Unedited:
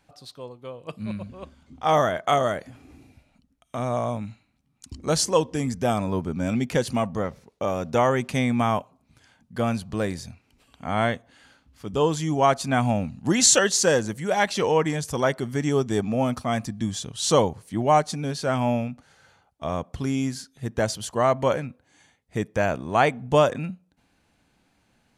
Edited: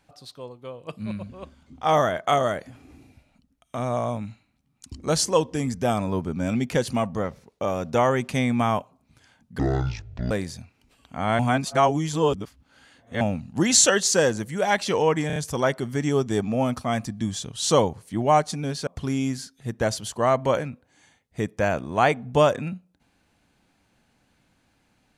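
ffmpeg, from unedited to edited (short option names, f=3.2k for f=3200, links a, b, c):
-filter_complex "[0:a]asplit=9[a][b][c][d][e][f][g][h][i];[a]atrim=end=9.594[j];[b]atrim=start=9.59:end=10,asetpts=PTS-STARTPTS,asetrate=25137,aresample=44100,atrim=end_sample=31721,asetpts=PTS-STARTPTS[k];[c]atrim=start=9.996:end=11.082[l];[d]atrim=start=11.078:end=12.902,asetpts=PTS-STARTPTS,areverse[m];[e]atrim=start=12.898:end=14.992[n];[f]atrim=start=14.958:end=14.992[o];[g]atrim=start=14.958:end=14.992[p];[h]atrim=start=14.958:end=18.472[q];[i]atrim=start=19.838[r];[j][k]acrossfade=d=0.004:c1=hsin:c2=hsin[s];[s][l]acrossfade=d=0.004:c1=hsin:c2=hsin[t];[t][m]acrossfade=d=0.004:c1=hsin:c2=hsin[u];[u][n]acrossfade=d=0.004:c1=hsin:c2=hsin[v];[v][o]acrossfade=d=0.004:c1=hsin:c2=hsin[w];[w][p]acrossfade=d=0.004:c1=hsin:c2=hsin[x];[x][q]acrossfade=d=0.004:c1=hsin:c2=hsin[y];[y][r]acrossfade=d=0.004:c1=hsin:c2=hsin"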